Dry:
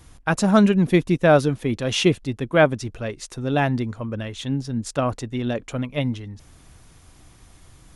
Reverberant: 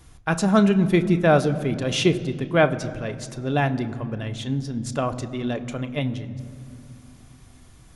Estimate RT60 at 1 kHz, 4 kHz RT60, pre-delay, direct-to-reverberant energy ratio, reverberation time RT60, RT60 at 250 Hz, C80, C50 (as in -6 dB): 2.3 s, 1.6 s, 3 ms, 8.5 dB, 2.5 s, 3.6 s, 15.5 dB, 14.5 dB